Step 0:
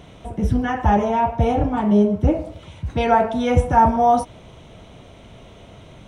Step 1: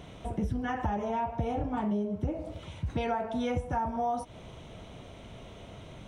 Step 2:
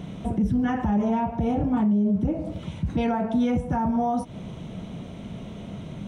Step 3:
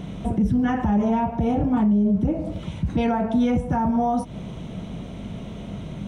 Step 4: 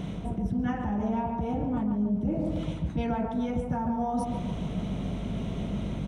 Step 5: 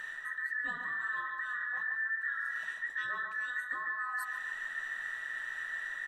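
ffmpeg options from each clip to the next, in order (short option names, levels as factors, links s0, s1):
-af "acompressor=threshold=0.0631:ratio=12,volume=0.668"
-af "equalizer=f=190:w=1.2:g=14.5,alimiter=limit=0.106:level=0:latency=1:release=10,volume=1.41"
-af "aeval=exprs='val(0)+0.00631*(sin(2*PI*50*n/s)+sin(2*PI*2*50*n/s)/2+sin(2*PI*3*50*n/s)/3+sin(2*PI*4*50*n/s)/4+sin(2*PI*5*50*n/s)/5)':c=same,volume=1.33"
-filter_complex "[0:a]areverse,acompressor=threshold=0.0398:ratio=6,areverse,asplit=2[s0][s1];[s1]adelay=141,lowpass=f=1400:p=1,volume=0.631,asplit=2[s2][s3];[s3]adelay=141,lowpass=f=1400:p=1,volume=0.48,asplit=2[s4][s5];[s5]adelay=141,lowpass=f=1400:p=1,volume=0.48,asplit=2[s6][s7];[s7]adelay=141,lowpass=f=1400:p=1,volume=0.48,asplit=2[s8][s9];[s9]adelay=141,lowpass=f=1400:p=1,volume=0.48,asplit=2[s10][s11];[s11]adelay=141,lowpass=f=1400:p=1,volume=0.48[s12];[s0][s2][s4][s6][s8][s10][s12]amix=inputs=7:normalize=0"
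-af "afftfilt=real='real(if(between(b,1,1012),(2*floor((b-1)/92)+1)*92-b,b),0)':imag='imag(if(between(b,1,1012),(2*floor((b-1)/92)+1)*92-b,b),0)*if(between(b,1,1012),-1,1)':win_size=2048:overlap=0.75,aemphasis=mode=production:type=cd,volume=0.376"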